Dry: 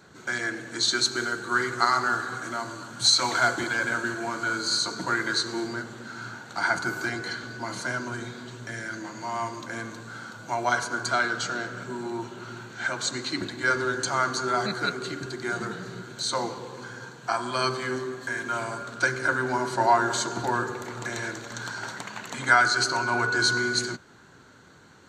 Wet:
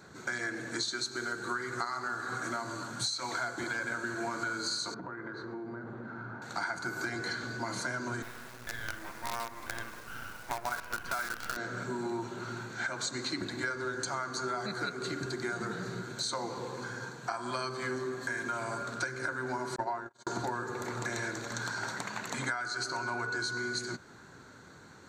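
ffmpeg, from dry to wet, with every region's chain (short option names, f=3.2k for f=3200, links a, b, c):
-filter_complex "[0:a]asettb=1/sr,asplit=3[a][b][c];[a]atrim=end=4.944[d];[b]atrim=start=4.94:end=6.42,asetpts=PTS-STARTPTS,afade=t=in:d=0.004:c=qsin,afade=t=out:st=1.476:d=0.004:c=qsin,lowpass=1.2k,acompressor=threshold=-37dB:ratio=12:attack=3.2:release=140:knee=1:detection=peak[e];[c]atrim=start=6.416[f];[d][e]acrossfade=d=0.004:c1=hsin:c2=qsin[g];[g][f]acrossfade=d=0.004:c1=qsin:c2=hsin,asettb=1/sr,asplit=3[h][i][j];[h]atrim=end=8.224[k];[i]atrim=start=8.22:end=11.57,asetpts=PTS-STARTPTS,afade=t=in:d=0.004:c=qsin,afade=t=out:st=3.346:d=0.004:c=qsin,lowpass=1.5k,tiltshelf=f=760:g=-9.5,acrusher=bits=5:dc=4:mix=0:aa=0.000001[l];[j]atrim=start=11.566[m];[k][l]acrossfade=d=0.004:c1=hsin:c2=qsin[n];[n][m]acrossfade=d=0.004:c1=qsin:c2=hsin,asettb=1/sr,asplit=3[o][p][q];[o]atrim=end=19.764[r];[p]atrim=start=19.76:end=20.27,asetpts=PTS-STARTPTS,afade=t=in:d=0.004:c=qsin,afade=t=out:st=0.506:d=0.004:c=qsin,agate=range=-52dB:threshold=-24dB:ratio=16:release=100:detection=peak,highshelf=f=4.5k:g=-9[s];[q]atrim=start=20.266[t];[r][s]acrossfade=d=0.004:c1=hsin:c2=qsin[u];[u][t]acrossfade=d=0.004:c1=qsin:c2=hsin,equalizer=f=3k:t=o:w=0.3:g=-7,acompressor=threshold=-31dB:ratio=16"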